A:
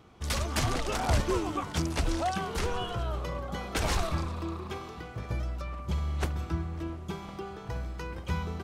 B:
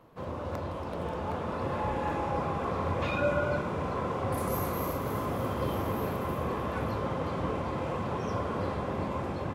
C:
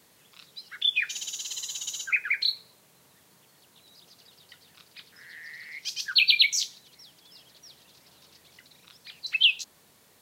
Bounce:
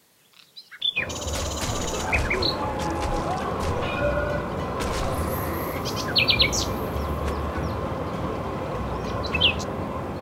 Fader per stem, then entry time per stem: -1.0 dB, +3.0 dB, 0.0 dB; 1.05 s, 0.80 s, 0.00 s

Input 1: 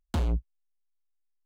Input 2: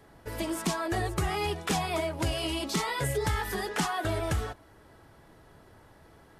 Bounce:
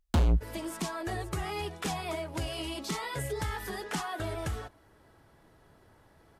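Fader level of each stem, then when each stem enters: +3.0 dB, -5.0 dB; 0.00 s, 0.15 s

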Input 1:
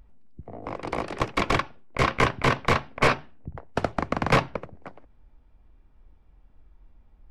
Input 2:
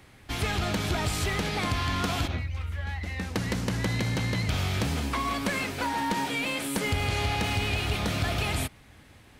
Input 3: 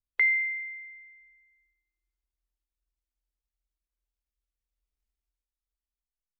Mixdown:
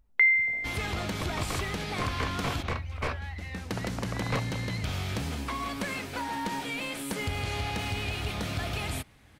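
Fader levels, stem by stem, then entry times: -12.5 dB, -4.5 dB, +2.5 dB; 0.00 s, 0.35 s, 0.00 s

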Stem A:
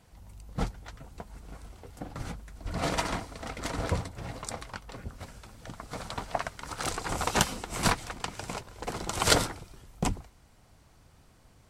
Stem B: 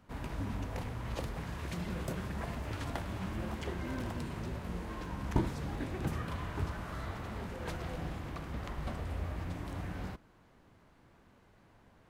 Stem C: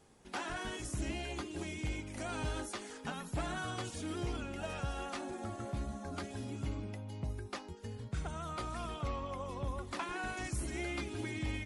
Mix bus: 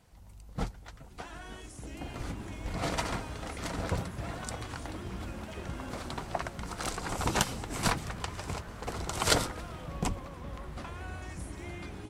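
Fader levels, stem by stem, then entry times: -3.0 dB, -4.5 dB, -6.5 dB; 0.00 s, 1.90 s, 0.85 s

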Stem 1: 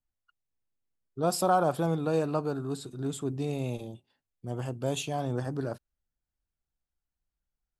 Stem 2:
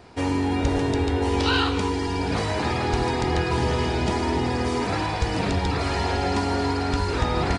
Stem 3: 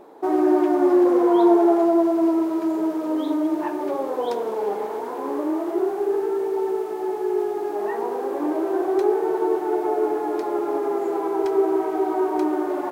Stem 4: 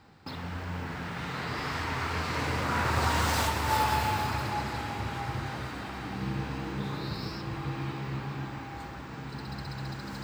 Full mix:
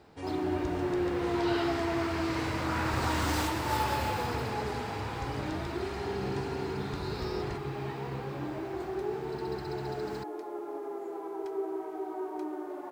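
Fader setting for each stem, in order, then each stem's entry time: mute, -16.5 dB, -14.5 dB, -4.0 dB; mute, 0.00 s, 0.00 s, 0.00 s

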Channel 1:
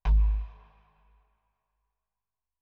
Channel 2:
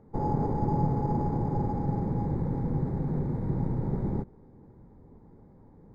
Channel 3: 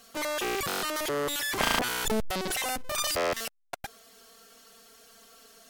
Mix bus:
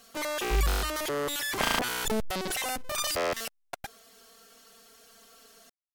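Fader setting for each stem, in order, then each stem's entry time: -4.0 dB, mute, -1.0 dB; 0.45 s, mute, 0.00 s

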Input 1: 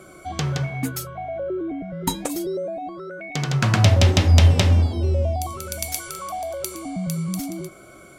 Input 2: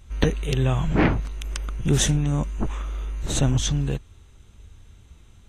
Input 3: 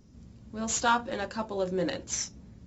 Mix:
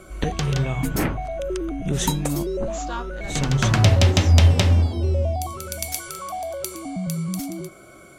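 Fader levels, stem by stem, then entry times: -0.5 dB, -4.5 dB, -7.5 dB; 0.00 s, 0.00 s, 2.05 s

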